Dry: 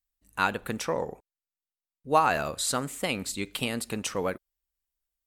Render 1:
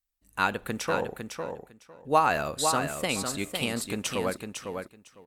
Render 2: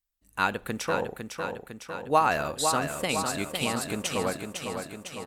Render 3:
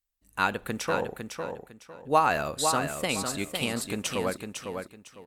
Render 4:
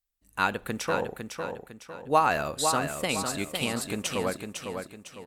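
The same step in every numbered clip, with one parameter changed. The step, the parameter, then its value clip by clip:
repeating echo, feedback: 16, 63, 26, 40%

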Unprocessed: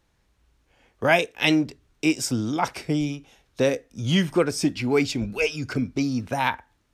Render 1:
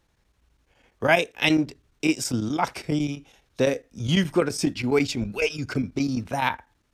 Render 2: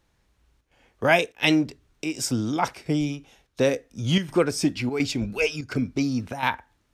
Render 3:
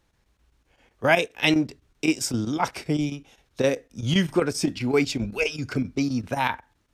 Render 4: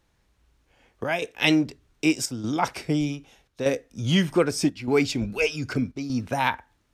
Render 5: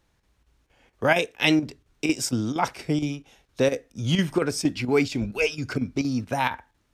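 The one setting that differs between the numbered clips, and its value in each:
square-wave tremolo, speed: 12, 1.4, 7.7, 0.82, 4.3 Hertz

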